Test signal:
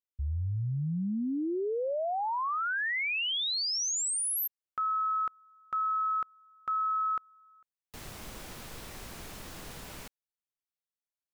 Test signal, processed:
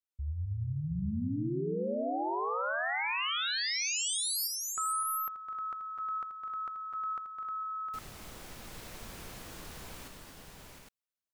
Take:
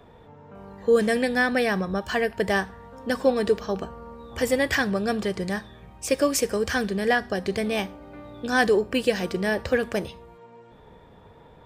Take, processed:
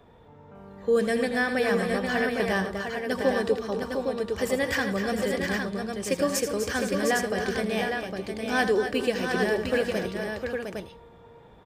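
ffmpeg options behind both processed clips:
ffmpeg -i in.wav -af "aecho=1:1:82|250|272|453|708|809:0.299|0.335|0.158|0.119|0.473|0.531,volume=-4dB" out.wav

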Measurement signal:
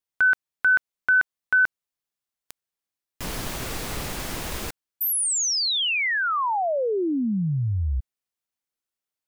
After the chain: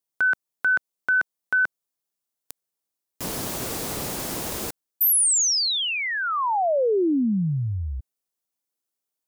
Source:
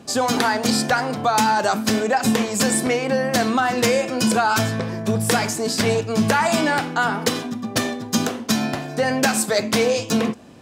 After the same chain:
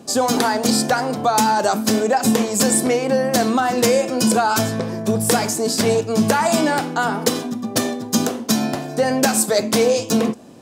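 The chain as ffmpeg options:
ffmpeg -i in.wav -af "highpass=frequency=240:poles=1,equalizer=frequency=2100:width_type=o:width=2.5:gain=-9,volume=6dB" out.wav

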